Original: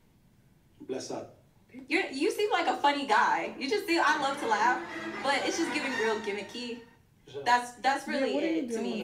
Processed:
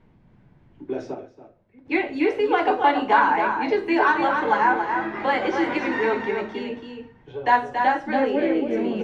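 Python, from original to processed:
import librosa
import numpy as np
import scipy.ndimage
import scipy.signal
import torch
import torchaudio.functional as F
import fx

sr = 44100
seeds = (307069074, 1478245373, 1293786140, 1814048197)

y = scipy.signal.sosfilt(scipy.signal.butter(2, 2000.0, 'lowpass', fs=sr, output='sos'), x)
y = y + 10.0 ** (-6.0 / 20.0) * np.pad(y, (int(279 * sr / 1000.0), 0))[:len(y)]
y = fx.upward_expand(y, sr, threshold_db=-45.0, expansion=1.5, at=(1.13, 1.85), fade=0.02)
y = F.gain(torch.from_numpy(y), 7.0).numpy()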